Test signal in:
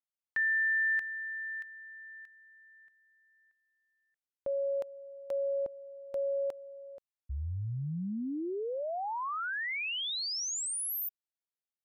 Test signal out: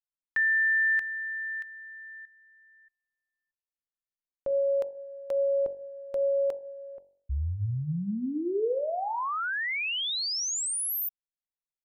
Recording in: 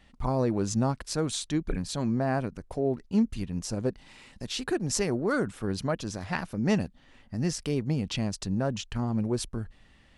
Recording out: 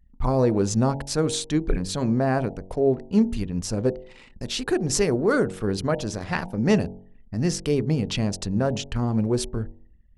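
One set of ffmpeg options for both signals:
-af "anlmdn=0.00398,lowshelf=f=66:g=5,bandreject=f=46.81:t=h:w=4,bandreject=f=93.62:t=h:w=4,bandreject=f=140.43:t=h:w=4,bandreject=f=187.24:t=h:w=4,bandreject=f=234.05:t=h:w=4,bandreject=f=280.86:t=h:w=4,bandreject=f=327.67:t=h:w=4,bandreject=f=374.48:t=h:w=4,bandreject=f=421.29:t=h:w=4,bandreject=f=468.1:t=h:w=4,bandreject=f=514.91:t=h:w=4,bandreject=f=561.72:t=h:w=4,bandreject=f=608.53:t=h:w=4,bandreject=f=655.34:t=h:w=4,bandreject=f=702.15:t=h:w=4,bandreject=f=748.96:t=h:w=4,bandreject=f=795.77:t=h:w=4,bandreject=f=842.58:t=h:w=4,bandreject=f=889.39:t=h:w=4,bandreject=f=936.2:t=h:w=4,adynamicequalizer=threshold=0.00631:dfrequency=450:dqfactor=2.9:tfrequency=450:tqfactor=2.9:attack=5:release=100:ratio=0.417:range=2.5:mode=boostabove:tftype=bell,volume=1.68"

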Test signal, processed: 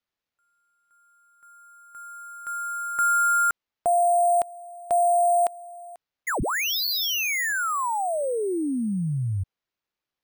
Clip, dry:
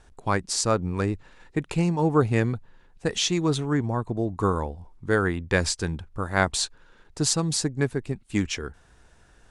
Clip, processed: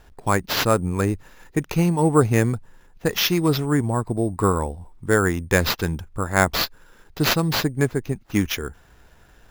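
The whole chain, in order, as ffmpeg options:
-af "acrusher=samples=5:mix=1:aa=0.000001,volume=1.58"

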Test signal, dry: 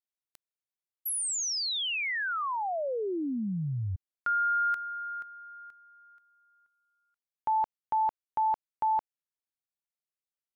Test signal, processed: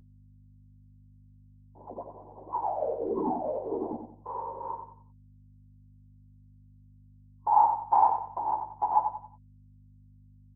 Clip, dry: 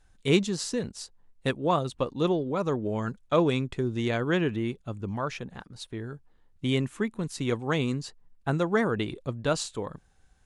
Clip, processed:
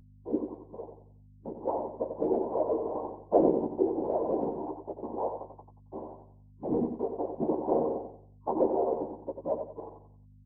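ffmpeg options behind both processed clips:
-filter_complex "[0:a]aresample=8000,aeval=exprs='val(0)*gte(abs(val(0)),0.0316)':c=same,aresample=44100,bandreject=f=60:t=h:w=6,bandreject=f=120:t=h:w=6,bandreject=f=180:t=h:w=6,bandreject=f=240:t=h:w=6,bandreject=f=300:t=h:w=6,bandreject=f=360:t=h:w=6,bandreject=f=420:t=h:w=6,adynamicequalizer=threshold=0.0126:dfrequency=340:dqfactor=2.1:tfrequency=340:tqfactor=2.1:attack=5:release=100:ratio=0.375:range=2:mode=cutabove:tftype=bell,dynaudnorm=f=480:g=9:m=4.47,flanger=delay=5.1:depth=3.4:regen=-10:speed=0.36:shape=sinusoidal,afftfilt=real='re*between(b*sr/4096,260,1000)':imag='im*between(b*sr/4096,260,1000)':win_size=4096:overlap=0.75,afftfilt=real='hypot(re,im)*cos(2*PI*random(0))':imag='hypot(re,im)*sin(2*PI*random(1))':win_size=512:overlap=0.75,aeval=exprs='val(0)+0.002*(sin(2*PI*50*n/s)+sin(2*PI*2*50*n/s)/2+sin(2*PI*3*50*n/s)/3+sin(2*PI*4*50*n/s)/4+sin(2*PI*5*50*n/s)/5)':c=same,asplit=2[s0][s1];[s1]adelay=13,volume=0.473[s2];[s0][s2]amix=inputs=2:normalize=0,asplit=2[s3][s4];[s4]aecho=0:1:91|182|273|364:0.447|0.152|0.0516|0.0176[s5];[s3][s5]amix=inputs=2:normalize=0,volume=1.12"

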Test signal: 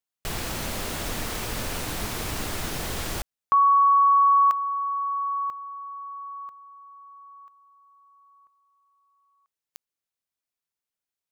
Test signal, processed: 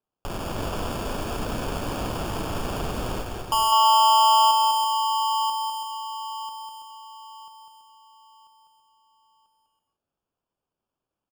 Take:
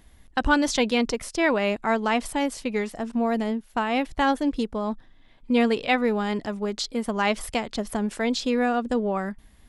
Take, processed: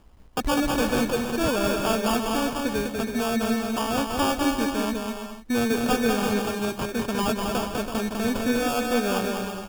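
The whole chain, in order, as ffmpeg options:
-filter_complex "[0:a]acrusher=samples=22:mix=1:aa=0.000001,asoftclip=type=tanh:threshold=0.126,asplit=2[s0][s1];[s1]aecho=0:1:200|330|414.5|469.4|505.1:0.631|0.398|0.251|0.158|0.1[s2];[s0][s2]amix=inputs=2:normalize=0"

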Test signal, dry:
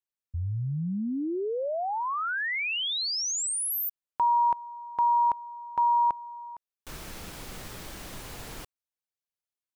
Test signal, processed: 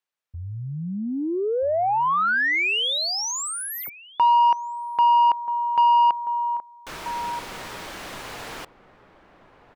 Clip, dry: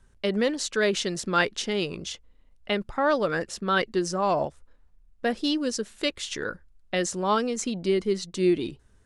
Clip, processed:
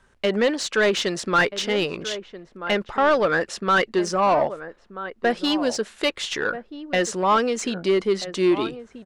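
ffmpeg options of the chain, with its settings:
-filter_complex "[0:a]asplit=2[s0][s1];[s1]adelay=1283,volume=0.2,highshelf=f=4000:g=-28.9[s2];[s0][s2]amix=inputs=2:normalize=0,asplit=2[s3][s4];[s4]highpass=f=720:p=1,volume=7.08,asoftclip=type=tanh:threshold=0.376[s5];[s3][s5]amix=inputs=2:normalize=0,lowpass=f=2300:p=1,volume=0.501"

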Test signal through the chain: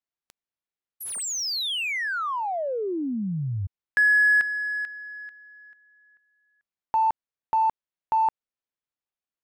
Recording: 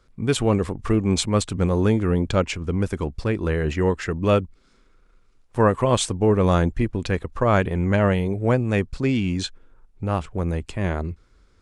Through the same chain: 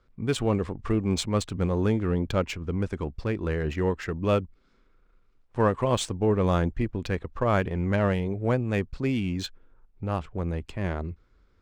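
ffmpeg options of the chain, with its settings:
-af "adynamicsmooth=sensitivity=5.5:basefreq=4700,volume=0.562"

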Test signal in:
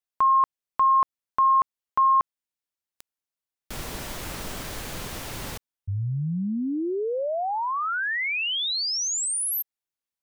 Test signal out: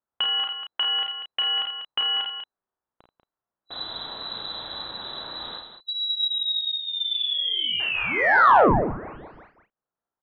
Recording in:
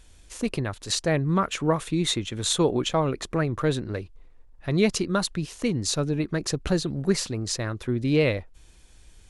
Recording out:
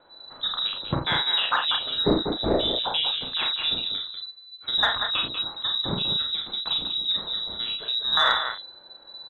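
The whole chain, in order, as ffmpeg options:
-filter_complex "[0:a]afwtdn=0.0282,equalizer=f=330:w=6.4:g=-14.5,acrossover=split=630|1600[s0][s1][s2];[s2]aexciter=amount=13.1:drive=7.6:freq=2500[s3];[s0][s1][s3]amix=inputs=3:normalize=0,acompressor=threshold=0.00794:ratio=1.5:attack=26:release=100:knee=6:detection=rms,lowpass=f=3400:t=q:w=0.5098,lowpass=f=3400:t=q:w=0.6013,lowpass=f=3400:t=q:w=0.9,lowpass=f=3400:t=q:w=2.563,afreqshift=-4000,asplit=2[s4][s5];[s5]adelay=34,volume=0.531[s6];[s4][s6]amix=inputs=2:normalize=0,aecho=1:1:49.56|192.4:0.501|0.398,acontrast=88,volume=0.708"

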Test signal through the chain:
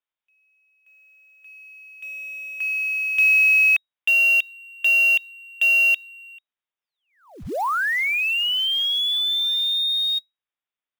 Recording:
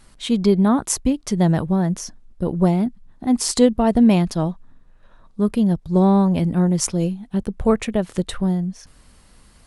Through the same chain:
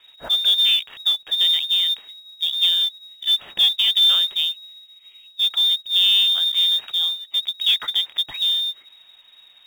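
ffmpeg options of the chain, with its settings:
-af "acontrast=87,lowpass=f=3200:t=q:w=0.5098,lowpass=f=3200:t=q:w=0.6013,lowpass=f=3200:t=q:w=0.9,lowpass=f=3200:t=q:w=2.563,afreqshift=-3800,acrusher=bits=5:mode=log:mix=0:aa=0.000001,volume=0.422"

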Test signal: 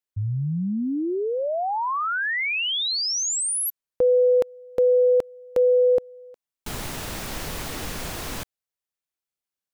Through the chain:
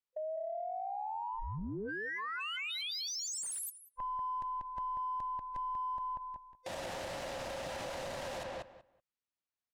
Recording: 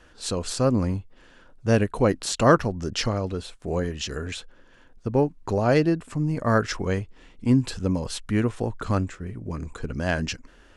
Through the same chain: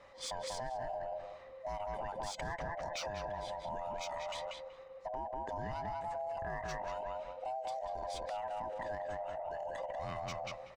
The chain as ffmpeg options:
-filter_complex "[0:a]afftfilt=real='real(if(lt(b,1008),b+24*(1-2*mod(floor(b/24),2)),b),0)':imag='imag(if(lt(b,1008),b+24*(1-2*mod(floor(b/24),2)),b),0)':win_size=2048:overlap=0.75,asplit=2[s0][s1];[s1]adelay=189,lowpass=f=2800:p=1,volume=0.631,asplit=2[s2][s3];[s3]adelay=189,lowpass=f=2800:p=1,volume=0.18,asplit=2[s4][s5];[s5]adelay=189,lowpass=f=2800:p=1,volume=0.18[s6];[s2][s4][s6]amix=inputs=3:normalize=0[s7];[s0][s7]amix=inputs=2:normalize=0,adynamicsmooth=sensitivity=3:basefreq=6700,alimiter=limit=0.188:level=0:latency=1:release=243,acompressor=threshold=0.0224:ratio=6:attack=3.6:release=49:knee=1:detection=rms,volume=0.596"

